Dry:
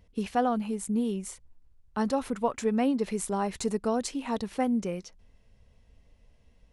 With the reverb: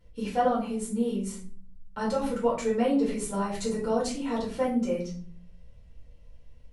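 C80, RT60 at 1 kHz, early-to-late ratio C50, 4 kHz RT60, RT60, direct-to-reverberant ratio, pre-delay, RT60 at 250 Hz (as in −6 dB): 12.0 dB, 0.40 s, 7.0 dB, 0.30 s, 0.45 s, −6.5 dB, 4 ms, 1.0 s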